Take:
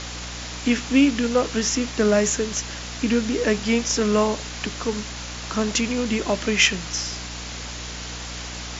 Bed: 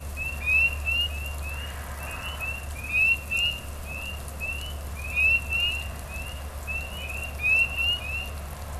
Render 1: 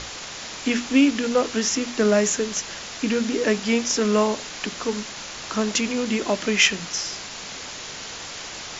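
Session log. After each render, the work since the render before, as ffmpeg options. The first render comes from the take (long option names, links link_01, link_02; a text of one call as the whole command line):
ffmpeg -i in.wav -af "bandreject=frequency=60:width_type=h:width=6,bandreject=frequency=120:width_type=h:width=6,bandreject=frequency=180:width_type=h:width=6,bandreject=frequency=240:width_type=h:width=6,bandreject=frequency=300:width_type=h:width=6" out.wav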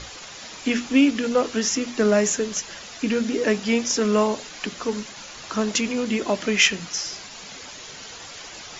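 ffmpeg -i in.wav -af "afftdn=noise_reduction=8:noise_floor=-36" out.wav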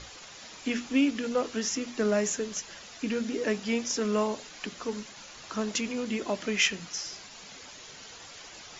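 ffmpeg -i in.wav -af "volume=-7.5dB" out.wav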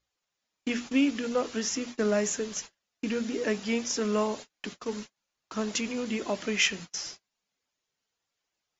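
ffmpeg -i in.wav -af "agate=range=-38dB:threshold=-39dB:ratio=16:detection=peak" out.wav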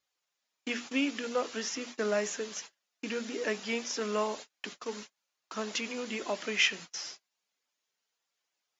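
ffmpeg -i in.wav -filter_complex "[0:a]highpass=frequency=530:poles=1,acrossover=split=5700[link_01][link_02];[link_02]acompressor=threshold=-50dB:ratio=4:attack=1:release=60[link_03];[link_01][link_03]amix=inputs=2:normalize=0" out.wav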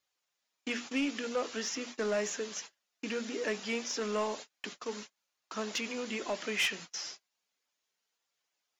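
ffmpeg -i in.wav -af "asoftclip=type=tanh:threshold=-24dB" out.wav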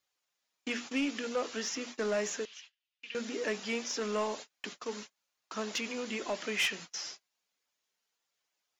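ffmpeg -i in.wav -filter_complex "[0:a]asettb=1/sr,asplit=3[link_01][link_02][link_03];[link_01]atrim=end=2.454[link_04];[link_02]atrim=start=2.45:end=3.15,asetpts=PTS-STARTPTS,afade=type=in:duration=0.004:curve=qsin,afade=type=out:start_time=0.696:duration=0.004:curve=qsin,bandpass=frequency=2900:width_type=q:width=2.7[link_05];[link_03]atrim=start=3.146[link_06];[link_04][link_05]acrossfade=duration=0.004:curve1=hsin:curve2=qsin[link_07];[link_07][link_06]acrossfade=duration=0.004:curve1=qsin:curve2=hsin" out.wav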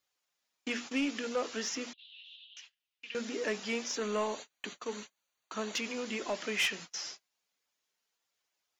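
ffmpeg -i in.wav -filter_complex "[0:a]asettb=1/sr,asplit=3[link_01][link_02][link_03];[link_01]atrim=end=1.934[link_04];[link_02]atrim=start=1.93:end=2.57,asetpts=PTS-STARTPTS,afade=type=in:duration=0.004:curve=qsin,afade=type=out:start_time=0.636:duration=0.004:curve=qsin,asuperpass=centerf=3300:order=8:qfactor=2.8[link_05];[link_03]atrim=start=2.566[link_06];[link_04][link_05]acrossfade=duration=0.004:curve1=hsin:curve2=qsin[link_07];[link_07][link_06]acrossfade=duration=0.004:curve1=qsin:curve2=hsin,asettb=1/sr,asplit=3[link_08][link_09][link_10];[link_08]atrim=end=3.954[link_11];[link_09]atrim=start=3.95:end=5.75,asetpts=PTS-STARTPTS,afade=type=in:duration=0.004:curve=qsin,afade=type=out:start_time=1.796:duration=0.004:curve=qsin,asuperstop=centerf=5200:order=8:qfactor=6.2[link_12];[link_10]atrim=start=5.746[link_13];[link_11][link_12]acrossfade=duration=0.004:curve1=hsin:curve2=qsin[link_14];[link_14][link_13]acrossfade=duration=0.004:curve1=qsin:curve2=hsin" out.wav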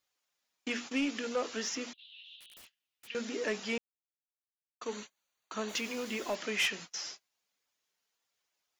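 ffmpeg -i in.wav -filter_complex "[0:a]asplit=3[link_01][link_02][link_03];[link_01]afade=type=out:start_time=2.39:duration=0.02[link_04];[link_02]aeval=exprs='(mod(266*val(0)+1,2)-1)/266':channel_layout=same,afade=type=in:start_time=2.39:duration=0.02,afade=type=out:start_time=3.06:duration=0.02[link_05];[link_03]afade=type=in:start_time=3.06:duration=0.02[link_06];[link_04][link_05][link_06]amix=inputs=3:normalize=0,asplit=3[link_07][link_08][link_09];[link_07]afade=type=out:start_time=5.68:duration=0.02[link_10];[link_08]acrusher=bits=7:mix=0:aa=0.5,afade=type=in:start_time=5.68:duration=0.02,afade=type=out:start_time=6.34:duration=0.02[link_11];[link_09]afade=type=in:start_time=6.34:duration=0.02[link_12];[link_10][link_11][link_12]amix=inputs=3:normalize=0,asplit=3[link_13][link_14][link_15];[link_13]atrim=end=3.78,asetpts=PTS-STARTPTS,afade=type=out:start_time=3.776:duration=0.004:curve=hsin[link_16];[link_14]atrim=start=3.78:end=4.81,asetpts=PTS-STARTPTS,volume=0[link_17];[link_15]atrim=start=4.81,asetpts=PTS-STARTPTS,afade=type=in:duration=0.004:curve=hsin[link_18];[link_16][link_17][link_18]concat=n=3:v=0:a=1" out.wav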